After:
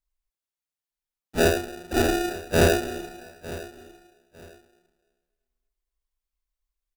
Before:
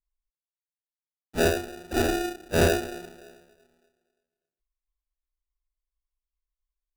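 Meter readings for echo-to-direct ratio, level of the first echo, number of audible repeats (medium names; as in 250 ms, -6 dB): -17.0 dB, -17.0 dB, 2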